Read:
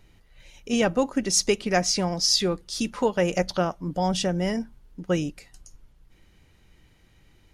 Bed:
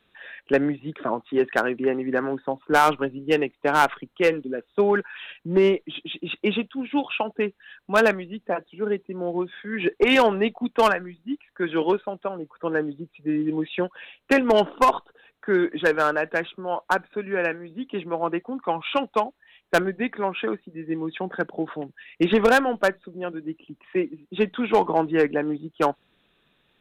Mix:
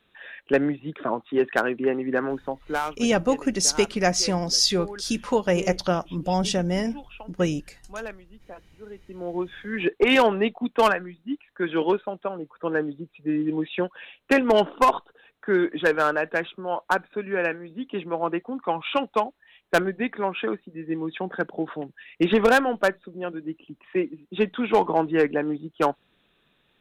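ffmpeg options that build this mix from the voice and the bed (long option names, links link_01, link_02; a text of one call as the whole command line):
ffmpeg -i stem1.wav -i stem2.wav -filter_complex "[0:a]adelay=2300,volume=1dB[link_01];[1:a]volume=16dB,afade=type=out:start_time=2.29:duration=0.67:silence=0.149624,afade=type=in:start_time=8.94:duration=0.55:silence=0.149624[link_02];[link_01][link_02]amix=inputs=2:normalize=0" out.wav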